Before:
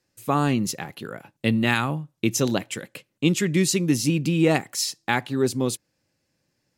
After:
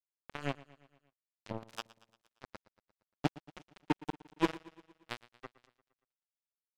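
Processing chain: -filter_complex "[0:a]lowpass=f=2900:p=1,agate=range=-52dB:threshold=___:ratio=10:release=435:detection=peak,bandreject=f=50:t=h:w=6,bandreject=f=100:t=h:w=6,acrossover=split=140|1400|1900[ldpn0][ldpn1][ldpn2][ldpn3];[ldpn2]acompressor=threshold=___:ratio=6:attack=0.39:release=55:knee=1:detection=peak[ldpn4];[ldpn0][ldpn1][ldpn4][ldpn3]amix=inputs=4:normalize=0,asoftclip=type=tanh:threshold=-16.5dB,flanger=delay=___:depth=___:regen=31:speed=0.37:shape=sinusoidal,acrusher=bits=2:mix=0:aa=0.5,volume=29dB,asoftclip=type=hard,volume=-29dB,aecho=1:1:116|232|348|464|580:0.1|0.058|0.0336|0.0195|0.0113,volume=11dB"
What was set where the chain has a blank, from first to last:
-43dB, -47dB, 5.5, 4.3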